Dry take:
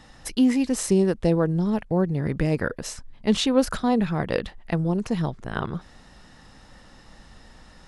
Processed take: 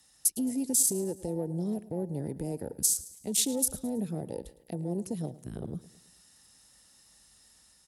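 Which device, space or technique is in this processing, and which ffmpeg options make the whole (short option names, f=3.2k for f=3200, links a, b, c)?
FM broadcast chain: -filter_complex "[0:a]highpass=f=42:w=0.5412,highpass=f=42:w=1.3066,dynaudnorm=f=110:g=5:m=3dB,acrossover=split=240|620|7600[a][b][c][d];[a]acompressor=threshold=-30dB:ratio=4[e];[b]acompressor=threshold=-20dB:ratio=4[f];[c]acompressor=threshold=-39dB:ratio=4[g];[d]acompressor=threshold=-44dB:ratio=4[h];[e][f][g][h]amix=inputs=4:normalize=0,aemphasis=mode=production:type=75fm,alimiter=limit=-17.5dB:level=0:latency=1:release=117,asoftclip=type=hard:threshold=-19dB,lowpass=f=15k:w=0.5412,lowpass=f=15k:w=1.3066,aemphasis=mode=production:type=75fm,afwtdn=0.0447,aecho=1:1:108|216|324|432:0.126|0.0579|0.0266|0.0123,volume=-5.5dB"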